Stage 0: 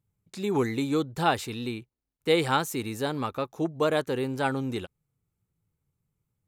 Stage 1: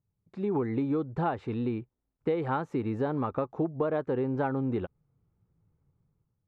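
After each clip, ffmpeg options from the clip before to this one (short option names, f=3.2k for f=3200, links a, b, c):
-af "dynaudnorm=f=150:g=7:m=11dB,lowpass=1.2k,acompressor=threshold=-23dB:ratio=6,volume=-3dB"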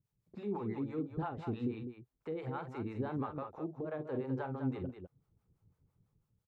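-filter_complex "[0:a]alimiter=level_in=4.5dB:limit=-24dB:level=0:latency=1:release=455,volume=-4.5dB,acrossover=split=520[a][b];[a]aeval=exprs='val(0)*(1-1/2+1/2*cos(2*PI*6*n/s))':c=same[c];[b]aeval=exprs='val(0)*(1-1/2-1/2*cos(2*PI*6*n/s))':c=same[d];[c][d]amix=inputs=2:normalize=0,asplit=2[e][f];[f]aecho=0:1:45|203:0.316|0.398[g];[e][g]amix=inputs=2:normalize=0,volume=2.5dB"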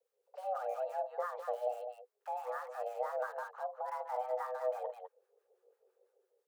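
-filter_complex "[0:a]acrossover=split=130|360|1600[a][b][c][d];[d]aeval=exprs='(mod(1000*val(0)+1,2)-1)/1000':c=same[e];[a][b][c][e]amix=inputs=4:normalize=0,afreqshift=370"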